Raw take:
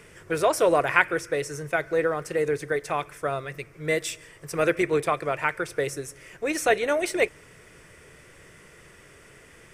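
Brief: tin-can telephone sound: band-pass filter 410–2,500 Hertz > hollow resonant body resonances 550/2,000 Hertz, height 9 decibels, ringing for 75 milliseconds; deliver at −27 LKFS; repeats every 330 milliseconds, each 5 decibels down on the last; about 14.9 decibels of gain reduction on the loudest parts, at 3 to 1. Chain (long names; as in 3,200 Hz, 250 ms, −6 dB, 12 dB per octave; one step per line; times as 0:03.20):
downward compressor 3 to 1, threshold −37 dBFS
band-pass filter 410–2,500 Hz
repeating echo 330 ms, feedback 56%, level −5 dB
hollow resonant body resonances 550/2,000 Hz, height 9 dB, ringing for 75 ms
level +10 dB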